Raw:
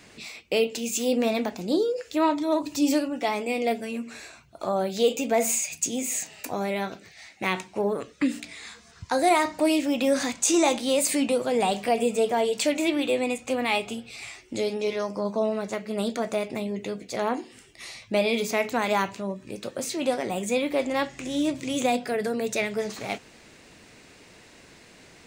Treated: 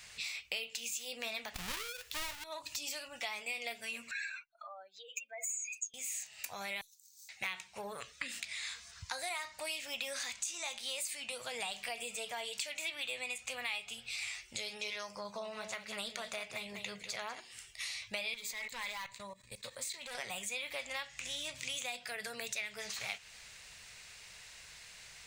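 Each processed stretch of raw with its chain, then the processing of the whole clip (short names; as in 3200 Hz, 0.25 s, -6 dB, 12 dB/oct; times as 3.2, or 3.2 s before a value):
1.54–2.44 half-waves squared off + low shelf 430 Hz +4.5 dB
4.11–5.94 spectral contrast raised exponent 2.3 + resonant high-pass 1600 Hz, resonance Q 2.8
6.81–7.29 inverse Chebyshev high-pass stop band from 1200 Hz, stop band 80 dB + careless resampling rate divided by 2×, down none, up hold
15.15–17.4 high shelf 6000 Hz -4.5 dB + echo 0.194 s -9 dB
18.34–20.15 ripple EQ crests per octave 1, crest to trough 8 dB + hard clip -21 dBFS + level quantiser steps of 17 dB
whole clip: passive tone stack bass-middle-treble 10-0-10; compressor 5:1, threshold -43 dBFS; dynamic EQ 2600 Hz, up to +4 dB, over -55 dBFS, Q 0.82; gain +3 dB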